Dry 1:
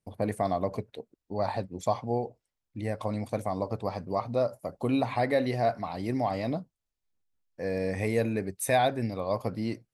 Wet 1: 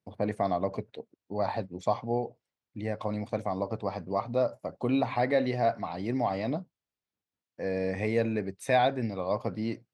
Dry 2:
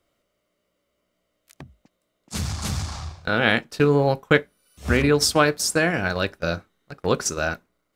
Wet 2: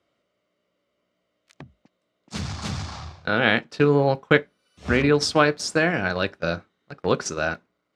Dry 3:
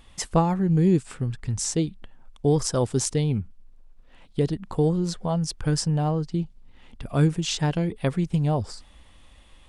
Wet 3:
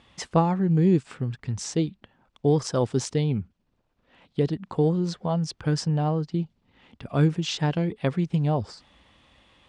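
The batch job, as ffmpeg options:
-af "highpass=100,lowpass=5000"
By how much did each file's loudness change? −0.5, −0.5, −0.5 LU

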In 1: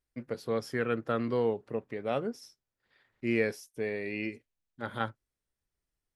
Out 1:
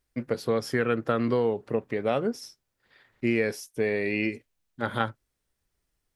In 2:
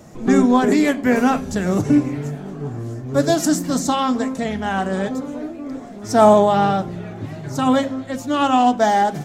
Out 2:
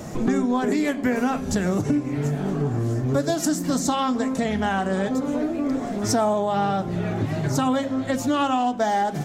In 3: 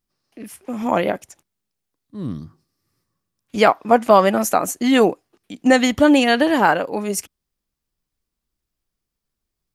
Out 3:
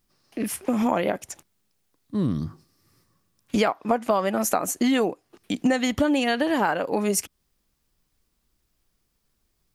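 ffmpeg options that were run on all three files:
-af "acompressor=threshold=-29dB:ratio=6,volume=8.5dB"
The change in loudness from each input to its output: +5.5, −5.5, −7.5 LU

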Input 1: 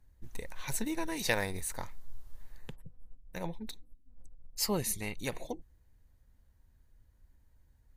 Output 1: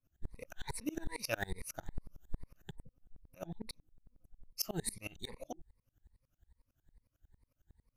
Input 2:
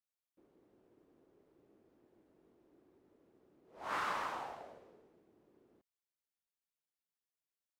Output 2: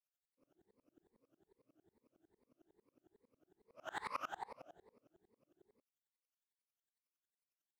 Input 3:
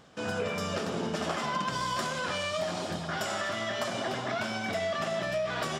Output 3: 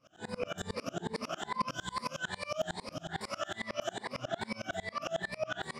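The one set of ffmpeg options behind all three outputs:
-af "afftfilt=real='re*pow(10,18/40*sin(2*PI*(0.92*log(max(b,1)*sr/1024/100)/log(2)-(2.4)*(pts-256)/sr)))':imag='im*pow(10,18/40*sin(2*PI*(0.92*log(max(b,1)*sr/1024/100)/log(2)-(2.4)*(pts-256)/sr)))':win_size=1024:overlap=0.75,aeval=exprs='val(0)*pow(10,-30*if(lt(mod(-11*n/s,1),2*abs(-11)/1000),1-mod(-11*n/s,1)/(2*abs(-11)/1000),(mod(-11*n/s,1)-2*abs(-11)/1000)/(1-2*abs(-11)/1000))/20)':channel_layout=same,volume=-1.5dB"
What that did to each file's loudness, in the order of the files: −7.0, −6.0, −6.5 LU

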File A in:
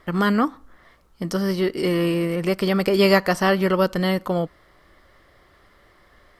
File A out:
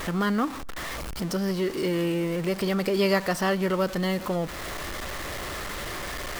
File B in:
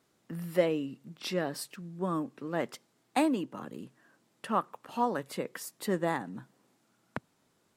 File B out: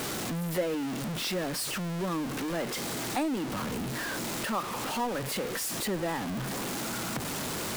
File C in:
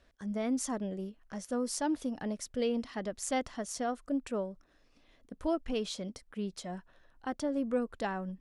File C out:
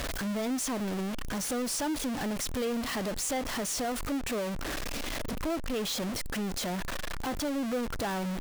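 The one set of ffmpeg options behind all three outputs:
-filter_complex "[0:a]aeval=exprs='val(0)+0.5*0.0531*sgn(val(0))':channel_layout=same,asplit=2[link_01][link_02];[link_02]acompressor=threshold=-30dB:ratio=6,volume=1.5dB[link_03];[link_01][link_03]amix=inputs=2:normalize=0,volume=-9dB"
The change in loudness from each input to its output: −6.5, +1.5, +3.0 LU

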